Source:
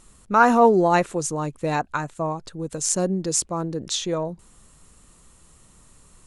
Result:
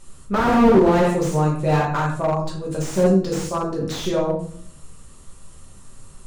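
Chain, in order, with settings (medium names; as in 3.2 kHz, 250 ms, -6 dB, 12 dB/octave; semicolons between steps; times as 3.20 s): simulated room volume 82 m³, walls mixed, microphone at 1.2 m; slew-rate limiter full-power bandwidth 120 Hz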